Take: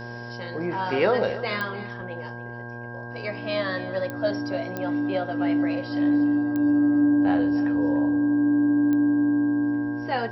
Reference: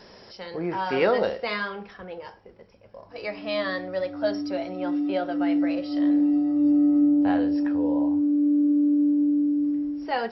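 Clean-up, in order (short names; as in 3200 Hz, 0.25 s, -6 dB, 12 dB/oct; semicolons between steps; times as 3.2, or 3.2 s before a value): de-click; de-hum 119.3 Hz, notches 9; notch 1600 Hz, Q 30; inverse comb 0.292 s -16 dB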